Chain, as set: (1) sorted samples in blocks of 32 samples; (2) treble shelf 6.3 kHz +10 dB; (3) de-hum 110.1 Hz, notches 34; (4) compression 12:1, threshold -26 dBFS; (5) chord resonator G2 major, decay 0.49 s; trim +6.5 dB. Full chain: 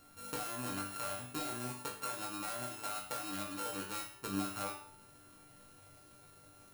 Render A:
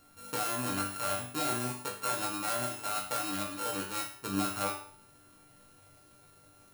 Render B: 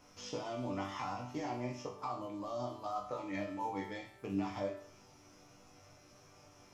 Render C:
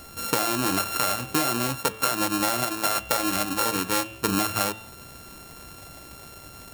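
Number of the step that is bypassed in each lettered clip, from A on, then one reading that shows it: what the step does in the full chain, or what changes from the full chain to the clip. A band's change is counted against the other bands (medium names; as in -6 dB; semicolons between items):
4, mean gain reduction 3.5 dB; 1, crest factor change -3.5 dB; 5, 125 Hz band -2.0 dB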